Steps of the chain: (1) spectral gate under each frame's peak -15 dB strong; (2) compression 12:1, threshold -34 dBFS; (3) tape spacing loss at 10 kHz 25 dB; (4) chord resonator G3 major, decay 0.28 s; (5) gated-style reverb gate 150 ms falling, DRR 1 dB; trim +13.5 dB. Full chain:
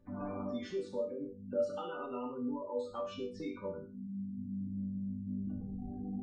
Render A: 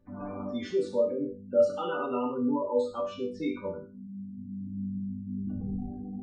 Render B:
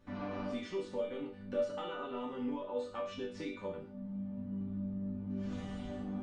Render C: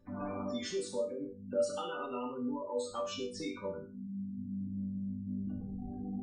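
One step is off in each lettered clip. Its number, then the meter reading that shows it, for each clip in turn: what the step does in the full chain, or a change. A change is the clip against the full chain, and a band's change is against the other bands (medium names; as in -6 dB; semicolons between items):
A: 2, mean gain reduction 5.0 dB; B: 1, 2 kHz band +4.5 dB; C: 3, 4 kHz band +7.5 dB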